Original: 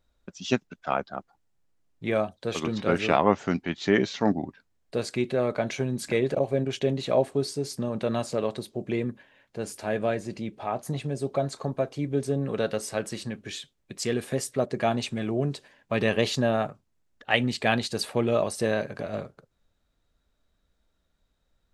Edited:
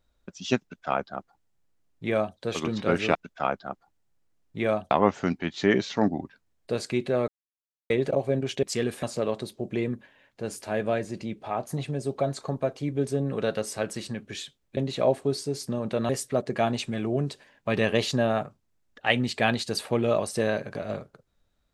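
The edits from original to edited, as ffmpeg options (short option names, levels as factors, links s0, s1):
-filter_complex "[0:a]asplit=9[s0][s1][s2][s3][s4][s5][s6][s7][s8];[s0]atrim=end=3.152[s9];[s1]atrim=start=0.618:end=2.382[s10];[s2]atrim=start=3.148:end=5.52,asetpts=PTS-STARTPTS,afade=t=out:st=2.368:d=0.004:c=hsin[s11];[s3]atrim=start=5.52:end=6.14,asetpts=PTS-STARTPTS,volume=0[s12];[s4]atrim=start=6.14:end=6.872,asetpts=PTS-STARTPTS,afade=t=in:d=0.004:c=hsin[s13];[s5]atrim=start=13.928:end=14.332[s14];[s6]atrim=start=8.188:end=13.932[s15];[s7]atrim=start=6.868:end=8.192[s16];[s8]atrim=start=14.328[s17];[s9][s10]acrossfade=d=0.004:c1=hsin:c2=hsin[s18];[s11][s12][s13]concat=n=3:v=0:a=1[s19];[s18][s19]acrossfade=d=0.004:c1=hsin:c2=hsin[s20];[s20][s14]acrossfade=d=0.004:c1=hsin:c2=hsin[s21];[s21][s15]acrossfade=d=0.004:c1=hsin:c2=hsin[s22];[s22][s16]acrossfade=d=0.004:c1=hsin:c2=hsin[s23];[s23][s17]acrossfade=d=0.004:c1=hsin:c2=hsin"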